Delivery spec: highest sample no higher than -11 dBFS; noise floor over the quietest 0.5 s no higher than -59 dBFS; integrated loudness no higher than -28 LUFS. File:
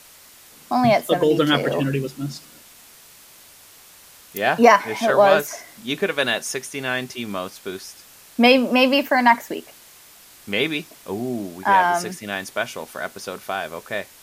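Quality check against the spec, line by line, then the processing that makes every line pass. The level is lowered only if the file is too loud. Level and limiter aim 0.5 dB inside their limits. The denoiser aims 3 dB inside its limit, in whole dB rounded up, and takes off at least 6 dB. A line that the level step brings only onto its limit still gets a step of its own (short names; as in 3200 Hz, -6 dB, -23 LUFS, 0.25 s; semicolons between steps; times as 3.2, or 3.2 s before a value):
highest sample -2.0 dBFS: fail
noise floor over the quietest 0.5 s -48 dBFS: fail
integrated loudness -20.0 LUFS: fail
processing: denoiser 6 dB, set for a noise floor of -48 dBFS; gain -8.5 dB; limiter -11.5 dBFS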